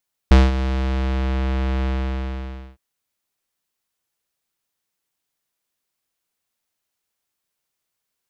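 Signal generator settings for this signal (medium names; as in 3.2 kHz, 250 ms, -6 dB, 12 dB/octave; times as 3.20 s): synth note square C2 12 dB/octave, low-pass 3.2 kHz, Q 0.93, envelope 0.5 oct, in 1.09 s, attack 1.8 ms, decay 0.20 s, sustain -13 dB, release 0.92 s, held 1.54 s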